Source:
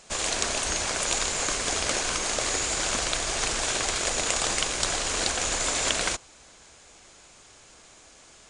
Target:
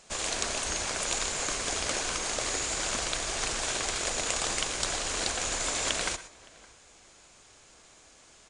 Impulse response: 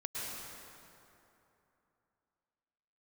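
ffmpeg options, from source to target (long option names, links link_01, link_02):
-filter_complex "[0:a]asplit=2[link_01][link_02];[link_02]adelay=565.6,volume=-22dB,highshelf=frequency=4000:gain=-12.7[link_03];[link_01][link_03]amix=inputs=2:normalize=0,asplit=2[link_04][link_05];[1:a]atrim=start_sample=2205,afade=type=out:start_time=0.18:duration=0.01,atrim=end_sample=8379[link_06];[link_05][link_06]afir=irnorm=-1:irlink=0,volume=-6dB[link_07];[link_04][link_07]amix=inputs=2:normalize=0,volume=-6.5dB"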